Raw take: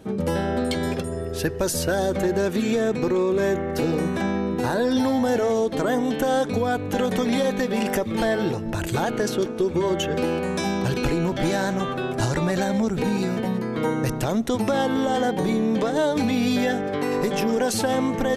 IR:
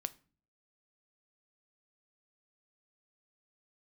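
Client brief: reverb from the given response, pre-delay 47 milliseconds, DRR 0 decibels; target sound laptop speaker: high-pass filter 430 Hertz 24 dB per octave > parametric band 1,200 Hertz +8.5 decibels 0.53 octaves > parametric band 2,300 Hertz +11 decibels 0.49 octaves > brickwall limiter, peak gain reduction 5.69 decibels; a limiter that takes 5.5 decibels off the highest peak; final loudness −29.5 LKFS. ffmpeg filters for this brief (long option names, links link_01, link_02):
-filter_complex "[0:a]alimiter=limit=-18dB:level=0:latency=1,asplit=2[link_01][link_02];[1:a]atrim=start_sample=2205,adelay=47[link_03];[link_02][link_03]afir=irnorm=-1:irlink=0,volume=1dB[link_04];[link_01][link_04]amix=inputs=2:normalize=0,highpass=frequency=430:width=0.5412,highpass=frequency=430:width=1.3066,equalizer=frequency=1200:width_type=o:width=0.53:gain=8.5,equalizer=frequency=2300:width_type=o:width=0.49:gain=11,volume=-4dB,alimiter=limit=-20dB:level=0:latency=1"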